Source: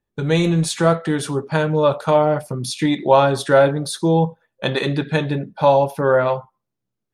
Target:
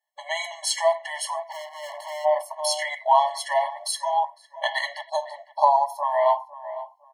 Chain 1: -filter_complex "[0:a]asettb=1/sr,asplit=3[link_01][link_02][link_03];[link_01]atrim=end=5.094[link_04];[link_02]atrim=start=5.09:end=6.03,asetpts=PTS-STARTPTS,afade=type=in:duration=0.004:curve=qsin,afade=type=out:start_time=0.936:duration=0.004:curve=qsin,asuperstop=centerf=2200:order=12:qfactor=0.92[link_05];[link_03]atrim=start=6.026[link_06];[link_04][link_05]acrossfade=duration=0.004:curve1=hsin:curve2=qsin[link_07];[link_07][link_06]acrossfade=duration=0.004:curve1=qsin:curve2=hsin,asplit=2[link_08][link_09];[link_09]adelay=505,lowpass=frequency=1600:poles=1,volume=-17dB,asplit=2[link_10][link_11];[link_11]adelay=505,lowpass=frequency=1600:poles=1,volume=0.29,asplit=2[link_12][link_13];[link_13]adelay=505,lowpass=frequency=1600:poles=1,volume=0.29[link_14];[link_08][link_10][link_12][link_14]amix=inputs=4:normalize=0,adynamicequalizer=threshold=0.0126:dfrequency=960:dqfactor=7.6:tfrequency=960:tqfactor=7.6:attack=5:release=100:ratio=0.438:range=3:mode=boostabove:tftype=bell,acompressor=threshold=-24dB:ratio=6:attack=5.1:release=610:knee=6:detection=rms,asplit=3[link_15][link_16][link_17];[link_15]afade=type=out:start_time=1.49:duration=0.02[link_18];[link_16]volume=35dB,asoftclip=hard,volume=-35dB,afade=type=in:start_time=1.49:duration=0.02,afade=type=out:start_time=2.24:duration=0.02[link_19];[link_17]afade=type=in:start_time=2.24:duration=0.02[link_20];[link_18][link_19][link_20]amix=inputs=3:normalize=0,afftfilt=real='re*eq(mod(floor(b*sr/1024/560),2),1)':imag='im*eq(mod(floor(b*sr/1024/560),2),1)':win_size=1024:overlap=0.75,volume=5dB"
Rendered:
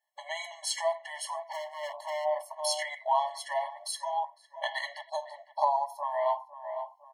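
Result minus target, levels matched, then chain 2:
downward compressor: peak gain reduction +8.5 dB
-filter_complex "[0:a]asettb=1/sr,asplit=3[link_01][link_02][link_03];[link_01]atrim=end=5.094[link_04];[link_02]atrim=start=5.09:end=6.03,asetpts=PTS-STARTPTS,afade=type=in:duration=0.004:curve=qsin,afade=type=out:start_time=0.936:duration=0.004:curve=qsin,asuperstop=centerf=2200:order=12:qfactor=0.92[link_05];[link_03]atrim=start=6.026[link_06];[link_04][link_05]acrossfade=duration=0.004:curve1=hsin:curve2=qsin[link_07];[link_07][link_06]acrossfade=duration=0.004:curve1=qsin:curve2=hsin,asplit=2[link_08][link_09];[link_09]adelay=505,lowpass=frequency=1600:poles=1,volume=-17dB,asplit=2[link_10][link_11];[link_11]adelay=505,lowpass=frequency=1600:poles=1,volume=0.29,asplit=2[link_12][link_13];[link_13]adelay=505,lowpass=frequency=1600:poles=1,volume=0.29[link_14];[link_08][link_10][link_12][link_14]amix=inputs=4:normalize=0,adynamicequalizer=threshold=0.0126:dfrequency=960:dqfactor=7.6:tfrequency=960:tqfactor=7.6:attack=5:release=100:ratio=0.438:range=3:mode=boostabove:tftype=bell,acompressor=threshold=-13.5dB:ratio=6:attack=5.1:release=610:knee=6:detection=rms,asplit=3[link_15][link_16][link_17];[link_15]afade=type=out:start_time=1.49:duration=0.02[link_18];[link_16]volume=35dB,asoftclip=hard,volume=-35dB,afade=type=in:start_time=1.49:duration=0.02,afade=type=out:start_time=2.24:duration=0.02[link_19];[link_17]afade=type=in:start_time=2.24:duration=0.02[link_20];[link_18][link_19][link_20]amix=inputs=3:normalize=0,afftfilt=real='re*eq(mod(floor(b*sr/1024/560),2),1)':imag='im*eq(mod(floor(b*sr/1024/560),2),1)':win_size=1024:overlap=0.75,volume=5dB"

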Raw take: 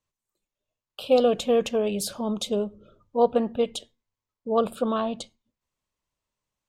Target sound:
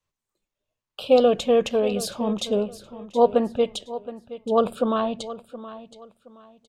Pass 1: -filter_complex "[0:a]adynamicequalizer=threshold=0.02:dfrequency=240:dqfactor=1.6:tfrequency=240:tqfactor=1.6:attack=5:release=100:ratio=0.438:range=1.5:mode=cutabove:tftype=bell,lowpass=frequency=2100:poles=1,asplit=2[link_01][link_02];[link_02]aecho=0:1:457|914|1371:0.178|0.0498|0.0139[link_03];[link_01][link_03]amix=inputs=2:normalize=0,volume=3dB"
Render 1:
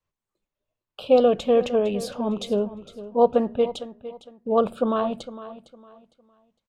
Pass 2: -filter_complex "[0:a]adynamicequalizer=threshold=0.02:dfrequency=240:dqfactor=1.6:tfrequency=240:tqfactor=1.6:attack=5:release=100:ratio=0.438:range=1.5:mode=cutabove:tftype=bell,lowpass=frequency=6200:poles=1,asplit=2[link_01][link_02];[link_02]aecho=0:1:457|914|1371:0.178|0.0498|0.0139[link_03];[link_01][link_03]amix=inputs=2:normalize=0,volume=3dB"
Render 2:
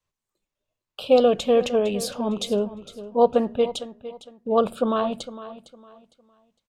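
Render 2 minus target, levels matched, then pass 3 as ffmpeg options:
echo 264 ms early
-filter_complex "[0:a]adynamicequalizer=threshold=0.02:dfrequency=240:dqfactor=1.6:tfrequency=240:tqfactor=1.6:attack=5:release=100:ratio=0.438:range=1.5:mode=cutabove:tftype=bell,lowpass=frequency=6200:poles=1,asplit=2[link_01][link_02];[link_02]aecho=0:1:721|1442|2163:0.178|0.0498|0.0139[link_03];[link_01][link_03]amix=inputs=2:normalize=0,volume=3dB"

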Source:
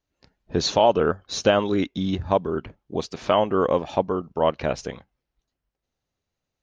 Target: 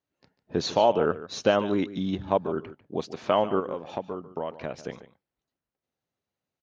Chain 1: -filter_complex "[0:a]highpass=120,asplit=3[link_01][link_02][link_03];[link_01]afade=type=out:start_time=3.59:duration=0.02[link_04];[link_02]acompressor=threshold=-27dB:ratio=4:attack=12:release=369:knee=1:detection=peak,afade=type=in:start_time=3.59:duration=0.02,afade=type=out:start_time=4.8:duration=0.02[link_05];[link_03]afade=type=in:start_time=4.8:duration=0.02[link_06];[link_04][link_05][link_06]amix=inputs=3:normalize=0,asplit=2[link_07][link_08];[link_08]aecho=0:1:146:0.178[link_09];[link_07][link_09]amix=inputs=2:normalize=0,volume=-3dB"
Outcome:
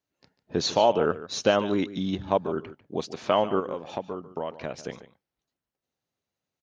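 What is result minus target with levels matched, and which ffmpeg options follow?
8,000 Hz band +5.0 dB
-filter_complex "[0:a]highpass=120,highshelf=frequency=4300:gain=-7.5,asplit=3[link_01][link_02][link_03];[link_01]afade=type=out:start_time=3.59:duration=0.02[link_04];[link_02]acompressor=threshold=-27dB:ratio=4:attack=12:release=369:knee=1:detection=peak,afade=type=in:start_time=3.59:duration=0.02,afade=type=out:start_time=4.8:duration=0.02[link_05];[link_03]afade=type=in:start_time=4.8:duration=0.02[link_06];[link_04][link_05][link_06]amix=inputs=3:normalize=0,asplit=2[link_07][link_08];[link_08]aecho=0:1:146:0.178[link_09];[link_07][link_09]amix=inputs=2:normalize=0,volume=-3dB"

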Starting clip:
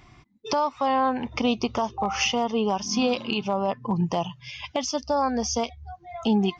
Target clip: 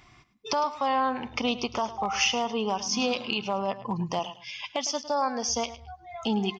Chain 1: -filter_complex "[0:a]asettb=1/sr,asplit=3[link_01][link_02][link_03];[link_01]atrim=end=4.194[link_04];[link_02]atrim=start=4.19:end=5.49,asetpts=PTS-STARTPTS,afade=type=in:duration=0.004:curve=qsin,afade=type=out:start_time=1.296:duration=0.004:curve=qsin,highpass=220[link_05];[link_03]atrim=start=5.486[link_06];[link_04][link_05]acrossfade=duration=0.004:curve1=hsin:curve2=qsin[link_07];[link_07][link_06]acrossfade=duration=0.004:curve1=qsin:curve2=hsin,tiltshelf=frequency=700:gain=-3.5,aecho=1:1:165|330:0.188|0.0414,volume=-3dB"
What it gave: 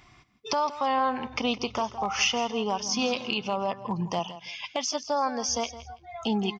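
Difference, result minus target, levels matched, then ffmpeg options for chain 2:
echo 58 ms late
-filter_complex "[0:a]asettb=1/sr,asplit=3[link_01][link_02][link_03];[link_01]atrim=end=4.194[link_04];[link_02]atrim=start=4.19:end=5.49,asetpts=PTS-STARTPTS,afade=type=in:duration=0.004:curve=qsin,afade=type=out:start_time=1.296:duration=0.004:curve=qsin,highpass=220[link_05];[link_03]atrim=start=5.486[link_06];[link_04][link_05]acrossfade=duration=0.004:curve1=hsin:curve2=qsin[link_07];[link_07][link_06]acrossfade=duration=0.004:curve1=qsin:curve2=hsin,tiltshelf=frequency=700:gain=-3.5,aecho=1:1:107|214:0.188|0.0414,volume=-3dB"

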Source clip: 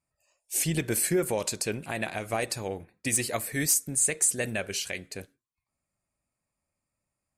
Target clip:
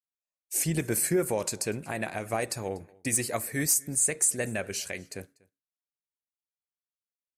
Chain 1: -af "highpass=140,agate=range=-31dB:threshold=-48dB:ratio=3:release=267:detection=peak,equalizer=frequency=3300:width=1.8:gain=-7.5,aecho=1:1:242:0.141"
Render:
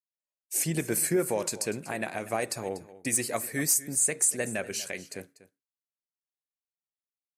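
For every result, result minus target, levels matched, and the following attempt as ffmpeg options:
echo-to-direct +8.5 dB; 125 Hz band −2.5 dB
-af "highpass=140,agate=range=-31dB:threshold=-48dB:ratio=3:release=267:detection=peak,equalizer=frequency=3300:width=1.8:gain=-7.5,aecho=1:1:242:0.0531"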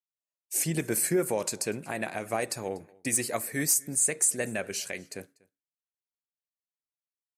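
125 Hz band −3.0 dB
-af "highpass=46,agate=range=-31dB:threshold=-48dB:ratio=3:release=267:detection=peak,equalizer=frequency=3300:width=1.8:gain=-7.5,aecho=1:1:242:0.0531"

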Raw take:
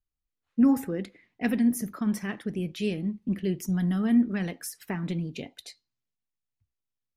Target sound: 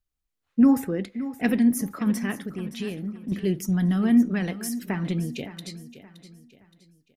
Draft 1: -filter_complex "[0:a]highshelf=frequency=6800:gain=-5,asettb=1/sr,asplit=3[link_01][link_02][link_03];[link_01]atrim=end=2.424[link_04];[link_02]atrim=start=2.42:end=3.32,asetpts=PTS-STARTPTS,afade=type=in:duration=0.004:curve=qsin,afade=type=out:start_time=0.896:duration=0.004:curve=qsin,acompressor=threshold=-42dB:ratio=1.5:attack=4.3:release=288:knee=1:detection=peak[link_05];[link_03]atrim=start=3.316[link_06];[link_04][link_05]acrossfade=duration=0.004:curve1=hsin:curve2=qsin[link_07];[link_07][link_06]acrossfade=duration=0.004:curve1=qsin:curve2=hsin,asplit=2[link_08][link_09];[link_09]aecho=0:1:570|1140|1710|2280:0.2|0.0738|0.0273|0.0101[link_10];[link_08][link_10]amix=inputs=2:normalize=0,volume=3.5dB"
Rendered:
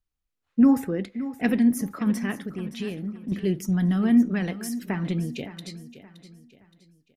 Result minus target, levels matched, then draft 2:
8,000 Hz band −3.0 dB
-filter_complex "[0:a]asettb=1/sr,asplit=3[link_01][link_02][link_03];[link_01]atrim=end=2.424[link_04];[link_02]atrim=start=2.42:end=3.32,asetpts=PTS-STARTPTS,afade=type=in:duration=0.004:curve=qsin,afade=type=out:start_time=0.896:duration=0.004:curve=qsin,acompressor=threshold=-42dB:ratio=1.5:attack=4.3:release=288:knee=1:detection=peak[link_05];[link_03]atrim=start=3.316[link_06];[link_04][link_05]acrossfade=duration=0.004:curve1=hsin:curve2=qsin[link_07];[link_07][link_06]acrossfade=duration=0.004:curve1=qsin:curve2=hsin,asplit=2[link_08][link_09];[link_09]aecho=0:1:570|1140|1710|2280:0.2|0.0738|0.0273|0.0101[link_10];[link_08][link_10]amix=inputs=2:normalize=0,volume=3.5dB"

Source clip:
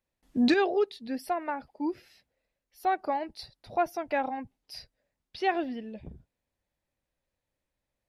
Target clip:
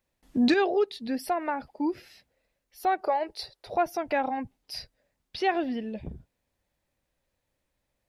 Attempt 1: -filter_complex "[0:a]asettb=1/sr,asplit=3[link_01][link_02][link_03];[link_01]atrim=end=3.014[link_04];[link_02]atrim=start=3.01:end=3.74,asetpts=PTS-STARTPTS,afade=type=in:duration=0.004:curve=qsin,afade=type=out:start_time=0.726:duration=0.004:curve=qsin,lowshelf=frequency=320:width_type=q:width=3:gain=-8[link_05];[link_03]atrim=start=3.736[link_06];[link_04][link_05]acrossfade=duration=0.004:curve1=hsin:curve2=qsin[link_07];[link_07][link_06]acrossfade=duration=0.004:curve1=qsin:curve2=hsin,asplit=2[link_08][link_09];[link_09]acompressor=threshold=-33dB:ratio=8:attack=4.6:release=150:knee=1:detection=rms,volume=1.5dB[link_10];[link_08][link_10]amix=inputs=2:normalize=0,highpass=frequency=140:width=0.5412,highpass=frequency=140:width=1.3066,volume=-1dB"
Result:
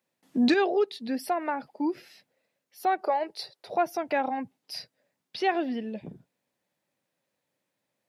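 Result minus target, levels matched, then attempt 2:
125 Hz band −3.0 dB
-filter_complex "[0:a]asettb=1/sr,asplit=3[link_01][link_02][link_03];[link_01]atrim=end=3.014[link_04];[link_02]atrim=start=3.01:end=3.74,asetpts=PTS-STARTPTS,afade=type=in:duration=0.004:curve=qsin,afade=type=out:start_time=0.726:duration=0.004:curve=qsin,lowshelf=frequency=320:width_type=q:width=3:gain=-8[link_05];[link_03]atrim=start=3.736[link_06];[link_04][link_05]acrossfade=duration=0.004:curve1=hsin:curve2=qsin[link_07];[link_07][link_06]acrossfade=duration=0.004:curve1=qsin:curve2=hsin,asplit=2[link_08][link_09];[link_09]acompressor=threshold=-33dB:ratio=8:attack=4.6:release=150:knee=1:detection=rms,volume=1.5dB[link_10];[link_08][link_10]amix=inputs=2:normalize=0,volume=-1dB"

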